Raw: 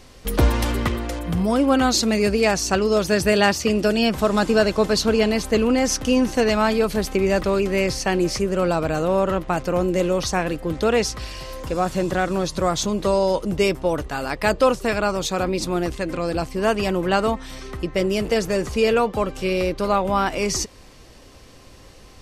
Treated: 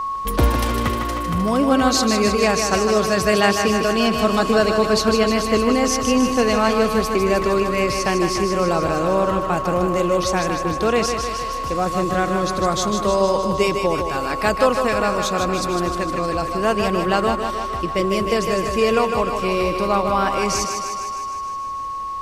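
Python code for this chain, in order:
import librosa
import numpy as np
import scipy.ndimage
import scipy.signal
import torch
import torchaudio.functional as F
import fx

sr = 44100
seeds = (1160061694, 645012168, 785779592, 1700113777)

y = x + 10.0 ** (-22.0 / 20.0) * np.sin(2.0 * np.pi * 1100.0 * np.arange(len(x)) / sr)
y = fx.echo_thinned(y, sr, ms=154, feedback_pct=67, hz=190.0, wet_db=-6.0)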